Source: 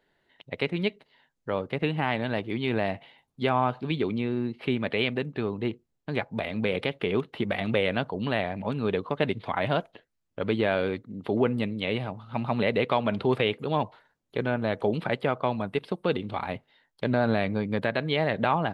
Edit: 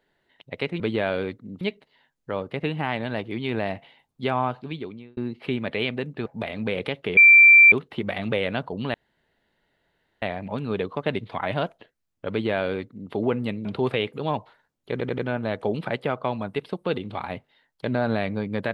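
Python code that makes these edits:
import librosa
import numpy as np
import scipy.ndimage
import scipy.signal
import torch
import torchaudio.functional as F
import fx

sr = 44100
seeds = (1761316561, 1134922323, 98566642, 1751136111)

y = fx.edit(x, sr, fx.fade_out_span(start_s=3.61, length_s=0.75),
    fx.cut(start_s=5.45, length_s=0.78),
    fx.insert_tone(at_s=7.14, length_s=0.55, hz=2350.0, db=-8.0),
    fx.insert_room_tone(at_s=8.36, length_s=1.28),
    fx.duplicate(start_s=10.45, length_s=0.81, to_s=0.8),
    fx.cut(start_s=11.79, length_s=1.32),
    fx.stutter(start_s=14.37, slice_s=0.09, count=4), tone=tone)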